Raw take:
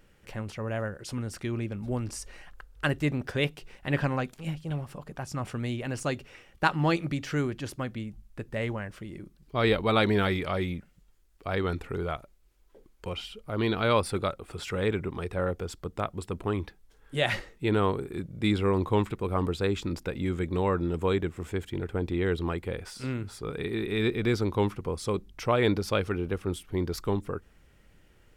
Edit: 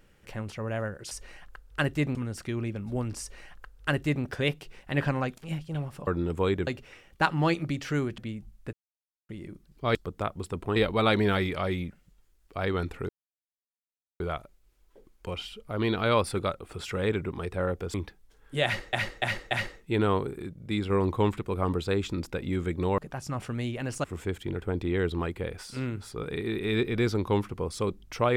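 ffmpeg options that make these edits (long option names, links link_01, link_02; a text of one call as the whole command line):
ffmpeg -i in.wav -filter_complex "[0:a]asplit=19[link_01][link_02][link_03][link_04][link_05][link_06][link_07][link_08][link_09][link_10][link_11][link_12][link_13][link_14][link_15][link_16][link_17][link_18][link_19];[link_01]atrim=end=1.112[link_20];[link_02]atrim=start=2.158:end=3.202[link_21];[link_03]atrim=start=1.108:end=5.032[link_22];[link_04]atrim=start=20.708:end=21.312[link_23];[link_05]atrim=start=6.088:end=7.602[link_24];[link_06]atrim=start=7.888:end=8.44,asetpts=PTS-STARTPTS,afade=type=out:start_time=0.548:duration=0.004:curve=hsin[link_25];[link_07]atrim=start=8.44:end=9,asetpts=PTS-STARTPTS,volume=0[link_26];[link_08]atrim=start=9:end=9.662,asetpts=PTS-STARTPTS,afade=type=in:duration=0.004:curve=hsin[link_27];[link_09]atrim=start=15.728:end=16.542[link_28];[link_10]atrim=start=9.658:end=11.99,asetpts=PTS-STARTPTS,afade=type=out:start_time=2.328:duration=0.004:curve=hsin,apad=pad_dur=1.11[link_29];[link_11]atrim=start=11.99:end=15.732,asetpts=PTS-STARTPTS,afade=type=in:duration=0.004:curve=hsin[link_30];[link_12]atrim=start=16.538:end=17.532[link_31];[link_13]atrim=start=17.238:end=17.532[link_32];[link_14]atrim=start=17.238:end=17.532[link_33];[link_15]atrim=start=17.238:end=18.152[link_34];[link_16]atrim=start=18.148:end=18.632,asetpts=PTS-STARTPTS,volume=-4dB[link_35];[link_17]atrim=start=18.628:end=20.712[link_36];[link_18]atrim=start=5.028:end=6.092[link_37];[link_19]atrim=start=21.308[link_38];[link_20][link_21]acrossfade=duration=0.004:curve1=hsin:curve2=hsin[link_39];[link_39][link_22]acrossfade=duration=0.004:curve1=hsin:curve2=hsin[link_40];[link_40][link_23]acrossfade=duration=0.004:curve1=hsin:curve2=hsin[link_41];[link_41][link_24]acrossfade=duration=0.004:curve1=hsin:curve2=hsin[link_42];[link_25][link_26][link_27]concat=n=3:v=0:a=1[link_43];[link_42][link_43]acrossfade=duration=0.004:curve1=hsin:curve2=hsin[link_44];[link_44][link_28]acrossfade=duration=0.004:curve1=hsin:curve2=hsin[link_45];[link_29][link_30]concat=n=2:v=0:a=1[link_46];[link_45][link_46]acrossfade=duration=0.004:curve1=hsin:curve2=hsin[link_47];[link_47][link_31]acrossfade=duration=0.004:curve1=hsin:curve2=hsin[link_48];[link_48][link_32]acrossfade=duration=0.004:curve1=hsin:curve2=hsin[link_49];[link_49][link_33]acrossfade=duration=0.004:curve1=hsin:curve2=hsin[link_50];[link_50][link_34]acrossfade=duration=0.004:curve1=hsin:curve2=hsin[link_51];[link_51][link_35]acrossfade=duration=0.004:curve1=hsin:curve2=hsin[link_52];[link_52][link_36]acrossfade=duration=0.004:curve1=hsin:curve2=hsin[link_53];[link_53][link_37]acrossfade=duration=0.004:curve1=hsin:curve2=hsin[link_54];[link_54][link_38]acrossfade=duration=0.004:curve1=hsin:curve2=hsin" out.wav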